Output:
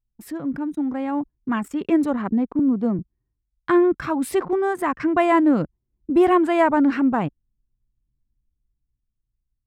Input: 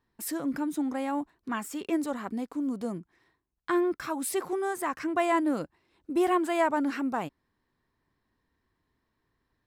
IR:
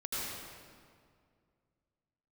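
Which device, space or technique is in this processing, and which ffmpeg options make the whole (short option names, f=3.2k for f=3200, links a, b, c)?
voice memo with heavy noise removal: -filter_complex "[0:a]asettb=1/sr,asplit=3[a][b][c];[a]atrim=end=2.594[d];[b]atrim=start=2.59:end=2.99,asetpts=PTS-STARTPTS,afade=t=in:d=0.004:c=qsin,afade=t=out:st=0.396:d=0.004:c=qsin,highpass=f=170:w=0.5412,highpass=f=170:w=1.3066[e];[c]atrim=start=2.986[f];[d][e]acrossfade=d=0.004:c1=hsin:c2=qsin[g];[g][f]acrossfade=d=0.004:c1=qsin:c2=hsin,anlmdn=0.251,dynaudnorm=f=290:g=9:m=7.5dB,bass=f=250:g=10,treble=f=4k:g=-10"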